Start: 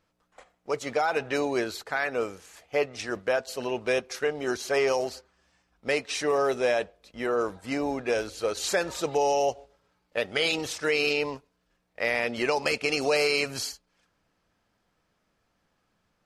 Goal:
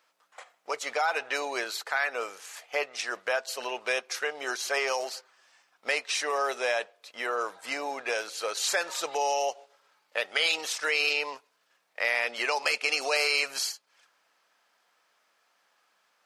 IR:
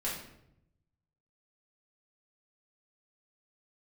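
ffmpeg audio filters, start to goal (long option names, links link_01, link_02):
-filter_complex "[0:a]highpass=780,asplit=2[link_01][link_02];[link_02]acompressor=threshold=-43dB:ratio=6,volume=2.5dB[link_03];[link_01][link_03]amix=inputs=2:normalize=0"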